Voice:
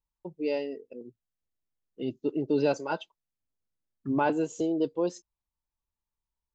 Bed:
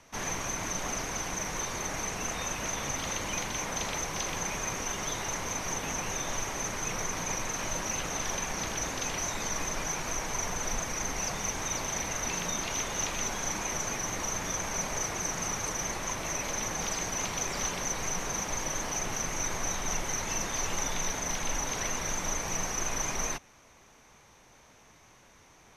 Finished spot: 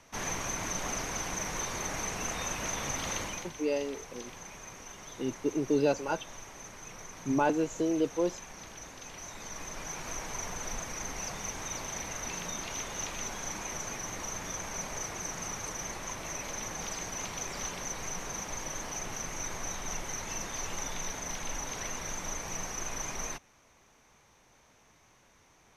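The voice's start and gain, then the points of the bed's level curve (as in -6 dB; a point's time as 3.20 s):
3.20 s, -1.0 dB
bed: 3.21 s -1 dB
3.56 s -13 dB
9.03 s -13 dB
10.12 s -5 dB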